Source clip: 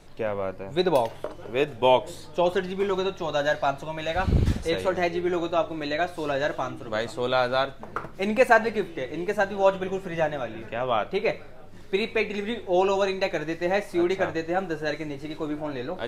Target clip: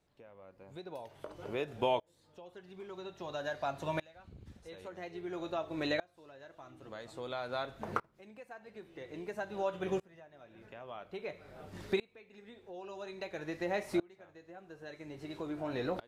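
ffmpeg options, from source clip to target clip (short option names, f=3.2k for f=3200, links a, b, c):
-af "highpass=48,acompressor=threshold=-35dB:ratio=3,aeval=exprs='val(0)*pow(10,-28*if(lt(mod(-0.5*n/s,1),2*abs(-0.5)/1000),1-mod(-0.5*n/s,1)/(2*abs(-0.5)/1000),(mod(-0.5*n/s,1)-2*abs(-0.5)/1000)/(1-2*abs(-0.5)/1000))/20)':c=same,volume=4dB"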